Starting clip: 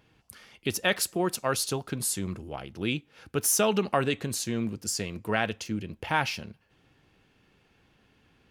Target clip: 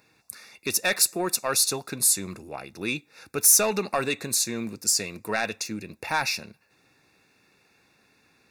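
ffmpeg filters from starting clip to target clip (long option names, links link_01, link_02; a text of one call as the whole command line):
ffmpeg -i in.wav -af "highpass=frequency=250:poles=1,asoftclip=type=tanh:threshold=-17dB,asuperstop=centerf=3100:order=20:qfactor=4.8,highshelf=frequency=3000:gain=9,volume=1.5dB" out.wav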